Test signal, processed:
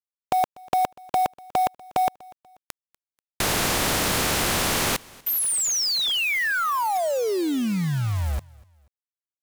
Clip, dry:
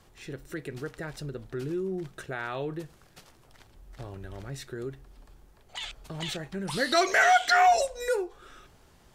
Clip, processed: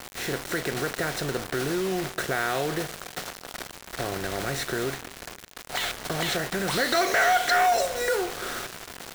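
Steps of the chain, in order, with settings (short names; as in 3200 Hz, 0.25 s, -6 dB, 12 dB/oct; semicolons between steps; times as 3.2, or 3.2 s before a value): per-bin compression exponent 0.6; low shelf 72 Hz -4.5 dB; in parallel at +2 dB: compressor 6:1, threshold -28 dBFS; on the sum: soft clip -8.5 dBFS; bit-crush 5-bit; on a send: feedback echo 0.243 s, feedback 37%, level -24 dB; on the sum: gain -4 dB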